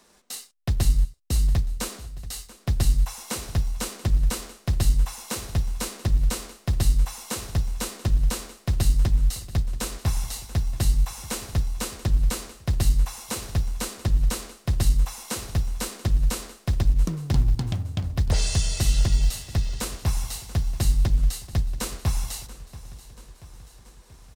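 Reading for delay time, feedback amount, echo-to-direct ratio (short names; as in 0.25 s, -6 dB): 0.683 s, 60%, -15.5 dB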